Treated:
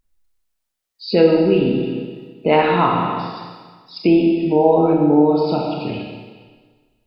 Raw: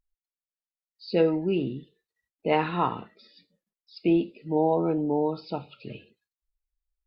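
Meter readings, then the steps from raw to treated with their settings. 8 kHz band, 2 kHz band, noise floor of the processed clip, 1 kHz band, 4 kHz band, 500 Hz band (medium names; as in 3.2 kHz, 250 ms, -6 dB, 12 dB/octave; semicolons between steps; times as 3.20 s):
no reading, +10.5 dB, -76 dBFS, +10.5 dB, +12.0 dB, +11.0 dB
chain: Schroeder reverb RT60 1.5 s, combs from 27 ms, DRR 0 dB; in parallel at +2 dB: compression, threshold -28 dBFS, peak gain reduction 13.5 dB; on the sum: trim +4.5 dB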